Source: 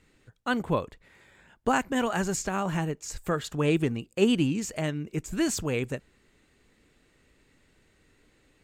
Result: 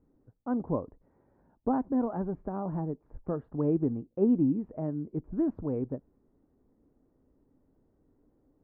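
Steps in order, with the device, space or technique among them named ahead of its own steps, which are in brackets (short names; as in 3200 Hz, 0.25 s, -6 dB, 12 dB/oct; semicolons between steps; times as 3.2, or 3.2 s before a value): under water (LPF 930 Hz 24 dB/oct; bell 270 Hz +7 dB 0.43 oct); gain -4.5 dB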